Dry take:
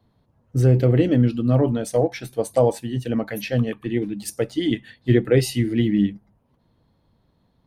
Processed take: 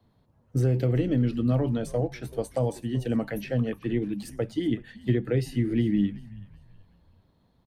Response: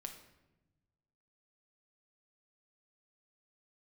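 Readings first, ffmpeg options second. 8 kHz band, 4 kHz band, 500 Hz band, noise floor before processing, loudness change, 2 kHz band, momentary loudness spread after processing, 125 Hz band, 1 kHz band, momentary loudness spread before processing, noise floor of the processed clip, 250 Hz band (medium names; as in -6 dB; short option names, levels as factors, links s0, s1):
-12.0 dB, -10.0 dB, -8.0 dB, -66 dBFS, -6.0 dB, -7.5 dB, 8 LU, -5.5 dB, -8.5 dB, 9 LU, -66 dBFS, -5.0 dB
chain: -filter_complex "[0:a]acrossover=split=230|1800[s0][s1][s2];[s0]acompressor=threshold=0.0794:ratio=4[s3];[s1]acompressor=threshold=0.0501:ratio=4[s4];[s2]acompressor=threshold=0.00562:ratio=4[s5];[s3][s4][s5]amix=inputs=3:normalize=0,asplit=4[s6][s7][s8][s9];[s7]adelay=379,afreqshift=-97,volume=0.112[s10];[s8]adelay=758,afreqshift=-194,volume=0.0403[s11];[s9]adelay=1137,afreqshift=-291,volume=0.0146[s12];[s6][s10][s11][s12]amix=inputs=4:normalize=0,volume=0.841"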